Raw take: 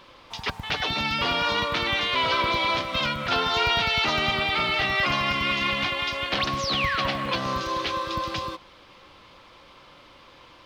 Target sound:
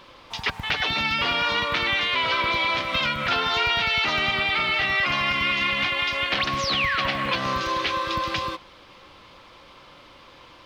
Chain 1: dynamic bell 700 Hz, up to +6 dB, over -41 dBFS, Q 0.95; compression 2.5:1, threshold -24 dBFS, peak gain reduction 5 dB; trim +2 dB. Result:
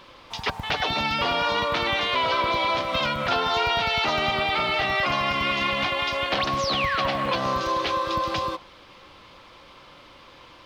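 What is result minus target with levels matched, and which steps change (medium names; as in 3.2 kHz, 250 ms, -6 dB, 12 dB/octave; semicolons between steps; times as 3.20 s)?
500 Hz band +6.0 dB
change: dynamic bell 2.1 kHz, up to +6 dB, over -41 dBFS, Q 0.95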